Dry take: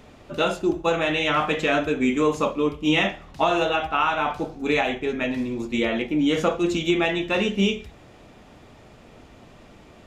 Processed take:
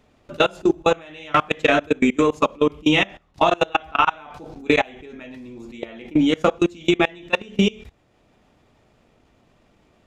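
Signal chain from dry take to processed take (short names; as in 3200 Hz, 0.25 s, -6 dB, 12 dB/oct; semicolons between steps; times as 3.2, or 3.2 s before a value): level quantiser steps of 21 dB; transient shaper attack +4 dB, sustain -3 dB; gain +4 dB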